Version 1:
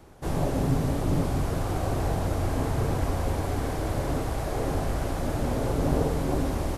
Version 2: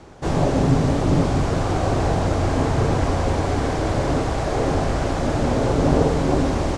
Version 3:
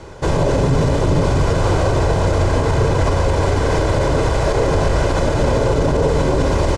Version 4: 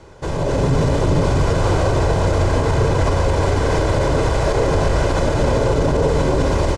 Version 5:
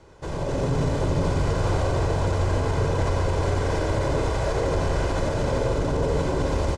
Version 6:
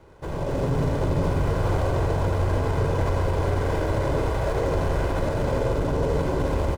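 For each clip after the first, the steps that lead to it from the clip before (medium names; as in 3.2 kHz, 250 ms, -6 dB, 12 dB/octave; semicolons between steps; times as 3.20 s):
low-pass 7.7 kHz 24 dB/octave; bass shelf 75 Hz -6 dB; trim +8.5 dB
comb 2 ms, depth 46%; peak limiter -14.5 dBFS, peak gain reduction 10 dB; trim +7 dB
level rider; trim -7 dB
delay 87 ms -6 dB; trim -8 dB
median filter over 9 samples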